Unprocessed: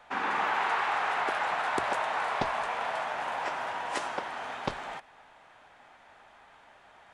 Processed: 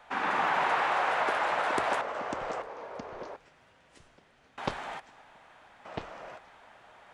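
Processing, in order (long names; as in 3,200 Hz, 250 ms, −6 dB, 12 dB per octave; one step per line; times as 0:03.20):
0:02.01–0:04.58: guitar amp tone stack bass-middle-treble 10-0-1
delay with pitch and tempo change per echo 84 ms, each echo −4 semitones, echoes 2, each echo −6 dB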